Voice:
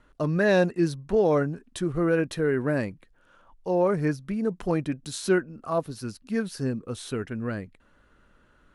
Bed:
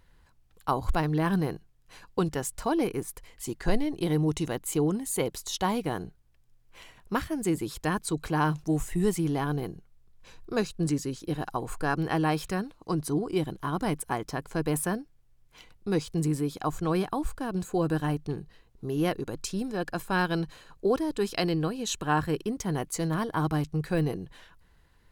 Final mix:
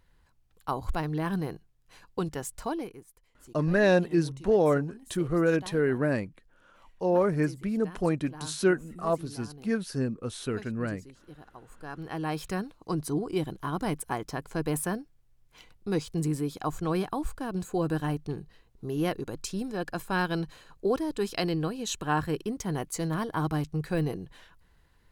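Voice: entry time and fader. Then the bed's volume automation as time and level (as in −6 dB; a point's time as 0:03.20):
3.35 s, −1.0 dB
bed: 0:02.69 −4 dB
0:03.03 −18 dB
0:11.62 −18 dB
0:12.50 −1.5 dB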